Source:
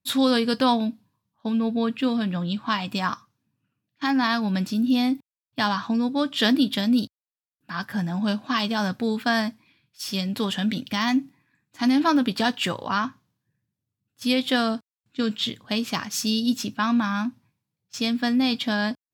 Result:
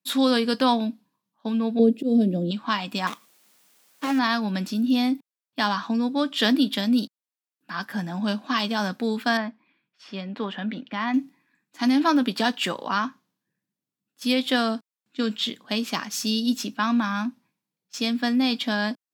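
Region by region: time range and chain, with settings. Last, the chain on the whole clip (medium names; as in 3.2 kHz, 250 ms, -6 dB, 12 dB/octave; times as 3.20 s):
1.79–2.51 s: FFT filter 100 Hz 0 dB, 390 Hz +12 dB, 630 Hz +5 dB, 1 kHz -24 dB, 11 kHz +3 dB + slow attack 129 ms
3.07–4.19 s: dead-time distortion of 0.27 ms + treble shelf 4.7 kHz -6.5 dB + word length cut 10-bit, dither triangular
9.37–11.14 s: low-pass 2 kHz + bass shelf 400 Hz -4.5 dB
whole clip: de-esser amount 45%; high-pass 190 Hz 24 dB/octave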